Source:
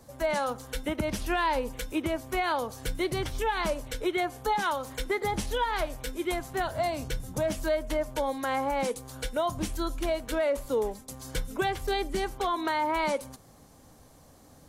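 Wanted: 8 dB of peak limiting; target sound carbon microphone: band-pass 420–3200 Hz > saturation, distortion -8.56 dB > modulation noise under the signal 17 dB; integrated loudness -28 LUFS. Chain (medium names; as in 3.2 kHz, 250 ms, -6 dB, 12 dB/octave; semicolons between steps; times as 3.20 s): peak limiter -26.5 dBFS; band-pass 420–3200 Hz; saturation -39.5 dBFS; modulation noise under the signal 17 dB; trim +15.5 dB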